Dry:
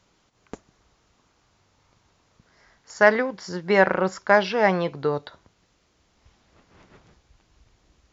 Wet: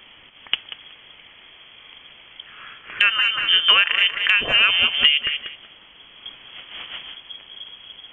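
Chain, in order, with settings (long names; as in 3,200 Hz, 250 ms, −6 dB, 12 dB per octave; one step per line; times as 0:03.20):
voice inversion scrambler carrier 3,300 Hz
on a send: tape delay 188 ms, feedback 31%, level −11 dB, low-pass 1,800 Hz
on the sum: downward compressor 20 to 1, threshold −30 dBFS, peak gain reduction 21.5 dB
boost into a limiter +18 dB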